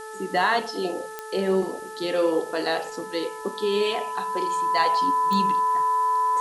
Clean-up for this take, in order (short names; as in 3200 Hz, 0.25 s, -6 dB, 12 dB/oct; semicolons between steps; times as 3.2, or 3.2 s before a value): de-click; de-hum 435.7 Hz, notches 4; notch 1000 Hz, Q 30; noise print and reduce 30 dB